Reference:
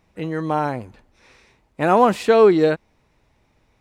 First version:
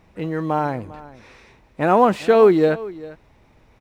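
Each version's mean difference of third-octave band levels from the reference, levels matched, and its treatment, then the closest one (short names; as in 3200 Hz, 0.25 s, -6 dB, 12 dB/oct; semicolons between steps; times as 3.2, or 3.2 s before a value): 2.0 dB: G.711 law mismatch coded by mu; high shelf 4000 Hz -8 dB; echo 0.399 s -18.5 dB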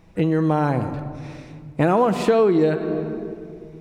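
5.5 dB: low shelf 490 Hz +7 dB; shoebox room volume 3200 m³, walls mixed, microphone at 0.68 m; compressor 4:1, threshold -21 dBFS, peak gain reduction 13 dB; gain +4.5 dB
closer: first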